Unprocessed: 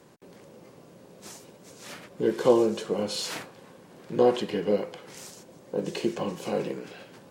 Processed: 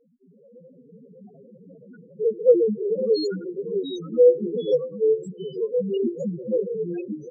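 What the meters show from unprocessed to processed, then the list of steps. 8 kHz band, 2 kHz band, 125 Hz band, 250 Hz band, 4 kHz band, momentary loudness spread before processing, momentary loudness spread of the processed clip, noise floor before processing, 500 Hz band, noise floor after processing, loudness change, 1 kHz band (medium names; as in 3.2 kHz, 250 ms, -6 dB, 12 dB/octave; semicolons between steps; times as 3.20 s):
under -15 dB, under -10 dB, +2.0 dB, +1.0 dB, -3.0 dB, 22 LU, 12 LU, -53 dBFS, +6.5 dB, -55 dBFS, +4.0 dB, under -20 dB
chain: comb 4.2 ms, depth 32%; level rider gain up to 8 dB; loudest bins only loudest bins 1; ever faster or slower copies 312 ms, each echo -2 st, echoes 3, each echo -6 dB; trim +4.5 dB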